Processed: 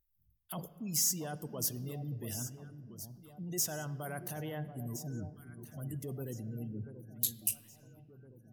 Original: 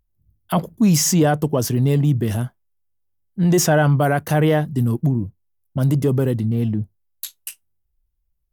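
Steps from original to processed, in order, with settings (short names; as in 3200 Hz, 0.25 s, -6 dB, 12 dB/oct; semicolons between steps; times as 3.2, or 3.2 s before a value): reverse; compressor 6:1, threshold -26 dBFS, peak gain reduction 14 dB; reverse; pre-emphasis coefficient 0.8; echo with dull and thin repeats by turns 0.683 s, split 1100 Hz, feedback 67%, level -10 dB; spectral gate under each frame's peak -30 dB strong; sine folder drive 4 dB, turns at -12.5 dBFS; on a send at -14 dB: ten-band EQ 4000 Hz +3 dB, 8000 Hz -6 dB, 16000 Hz -6 dB + reverb RT60 2.3 s, pre-delay 3 ms; on the sum: gain -7 dB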